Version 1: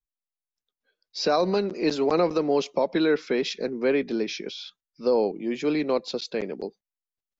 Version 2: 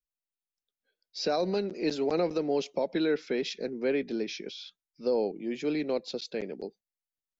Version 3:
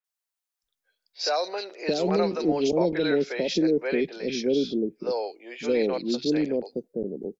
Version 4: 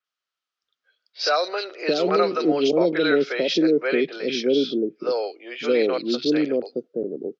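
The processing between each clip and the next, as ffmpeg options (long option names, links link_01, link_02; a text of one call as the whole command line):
ffmpeg -i in.wav -af "equalizer=frequency=1100:width=2.8:gain=-9,volume=-5dB" out.wav
ffmpeg -i in.wav -filter_complex "[0:a]acrossover=split=540|2800[link_01][link_02][link_03];[link_03]adelay=40[link_04];[link_01]adelay=620[link_05];[link_05][link_02][link_04]amix=inputs=3:normalize=0,volume=7dB" out.wav
ffmpeg -i in.wav -af "highpass=170,equalizer=frequency=200:width_type=q:width=4:gain=-8,equalizer=frequency=880:width_type=q:width=4:gain=-7,equalizer=frequency=1300:width_type=q:width=4:gain=10,equalizer=frequency=3100:width_type=q:width=4:gain=5,lowpass=frequency=5500:width=0.5412,lowpass=frequency=5500:width=1.3066,volume=4.5dB" out.wav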